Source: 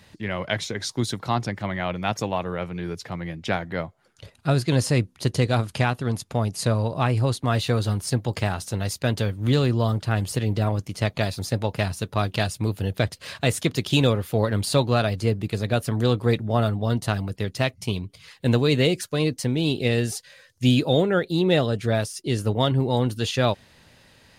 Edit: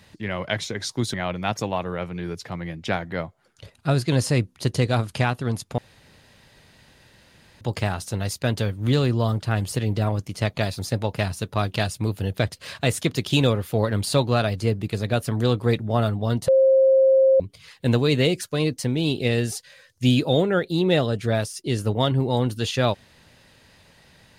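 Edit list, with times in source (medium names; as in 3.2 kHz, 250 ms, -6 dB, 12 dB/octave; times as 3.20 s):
1.14–1.74 s: delete
6.38–8.21 s: room tone
17.08–18.00 s: bleep 532 Hz -12.5 dBFS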